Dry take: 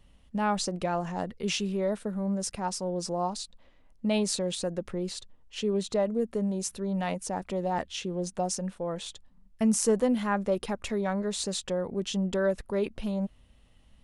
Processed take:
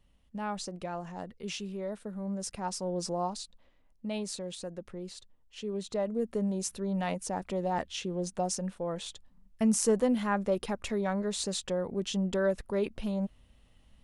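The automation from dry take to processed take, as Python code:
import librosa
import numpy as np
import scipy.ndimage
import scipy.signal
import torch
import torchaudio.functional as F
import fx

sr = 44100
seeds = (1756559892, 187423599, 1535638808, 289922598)

y = fx.gain(x, sr, db=fx.line((1.92, -8.0), (3.03, -1.0), (4.06, -8.5), (5.6, -8.5), (6.35, -1.5)))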